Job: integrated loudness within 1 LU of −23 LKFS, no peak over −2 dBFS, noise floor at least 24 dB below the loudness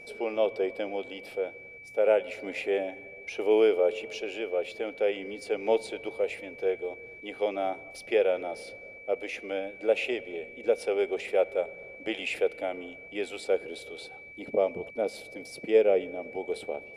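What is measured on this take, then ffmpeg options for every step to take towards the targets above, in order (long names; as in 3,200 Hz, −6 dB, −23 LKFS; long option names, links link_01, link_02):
interfering tone 2,300 Hz; level of the tone −45 dBFS; integrated loudness −30.0 LKFS; sample peak −11.0 dBFS; target loudness −23.0 LKFS
→ -af "bandreject=frequency=2300:width=30"
-af "volume=7dB"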